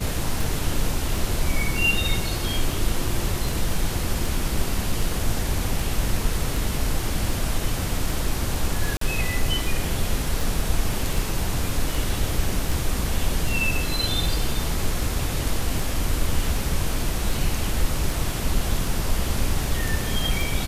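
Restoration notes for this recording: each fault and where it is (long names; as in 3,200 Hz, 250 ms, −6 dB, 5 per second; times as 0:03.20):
scratch tick 78 rpm
0:08.97–0:09.01: drop-out 43 ms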